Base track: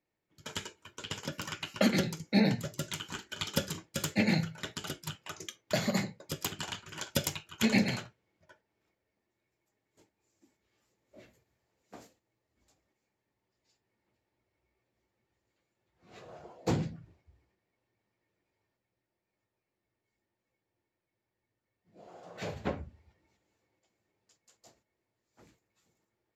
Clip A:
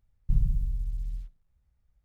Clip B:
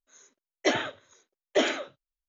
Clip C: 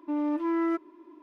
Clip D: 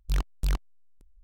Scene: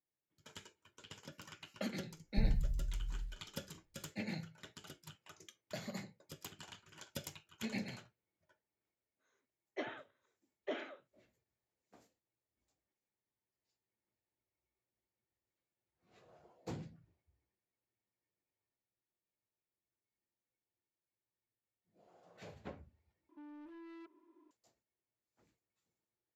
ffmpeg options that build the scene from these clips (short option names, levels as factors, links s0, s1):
-filter_complex "[0:a]volume=0.188[s0];[2:a]highpass=120,lowpass=2600[s1];[3:a]asoftclip=type=tanh:threshold=0.0178[s2];[s0]asplit=2[s3][s4];[s3]atrim=end=23.294[s5];[s2]atrim=end=1.22,asetpts=PTS-STARTPTS,volume=0.158[s6];[s4]atrim=start=24.506[s7];[1:a]atrim=end=2.04,asetpts=PTS-STARTPTS,volume=0.398,afade=t=in:d=0.004:c=hsin,afade=t=out:st=2.036:d=0.004:c=hsin,adelay=2080[s8];[s1]atrim=end=2.28,asetpts=PTS-STARTPTS,volume=0.15,afade=t=in:d=0.004:c=hsin,afade=t=out:st=2.276:d=0.004:c=hsin,adelay=9120[s9];[s5][s6]acrossfade=d=0.004:c1=hsin:c2=hsin[s10];[s10][s7]acrossfade=d=0.004:c1=hsin:c2=hsin[s11];[s11][s8][s9]amix=inputs=3:normalize=0"